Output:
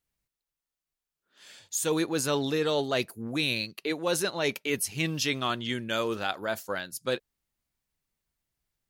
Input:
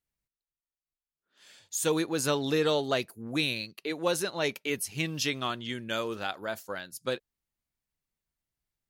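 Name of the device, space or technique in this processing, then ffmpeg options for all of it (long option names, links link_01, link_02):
compression on the reversed sound: -af "areverse,acompressor=threshold=-28dB:ratio=6,areverse,volume=4.5dB"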